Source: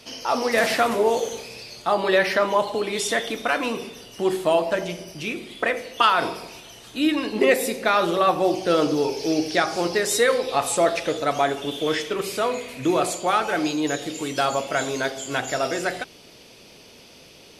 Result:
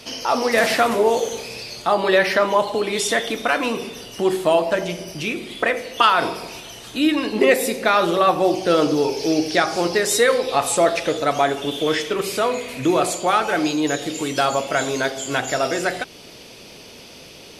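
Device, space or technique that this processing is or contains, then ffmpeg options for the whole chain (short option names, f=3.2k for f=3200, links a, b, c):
parallel compression: -filter_complex "[0:a]asplit=2[a][b];[b]acompressor=threshold=-34dB:ratio=6,volume=-4dB[c];[a][c]amix=inputs=2:normalize=0,volume=2dB"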